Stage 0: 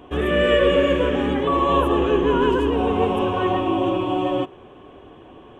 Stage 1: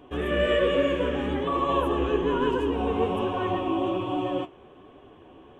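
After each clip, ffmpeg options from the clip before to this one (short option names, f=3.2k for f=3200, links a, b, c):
-af "flanger=delay=6.4:depth=9.3:regen=52:speed=1.2:shape=triangular,volume=-2dB"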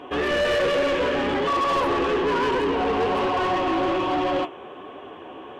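-filter_complex "[0:a]asplit=2[a][b];[b]highpass=f=720:p=1,volume=26dB,asoftclip=type=tanh:threshold=-11dB[c];[a][c]amix=inputs=2:normalize=0,lowpass=f=2.6k:p=1,volume=-6dB,volume=-4dB"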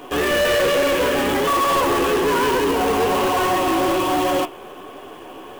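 -filter_complex "[0:a]asplit=2[a][b];[b]acrusher=bits=5:dc=4:mix=0:aa=0.000001,volume=-6.5dB[c];[a][c]amix=inputs=2:normalize=0,highshelf=f=5.9k:g=8.5"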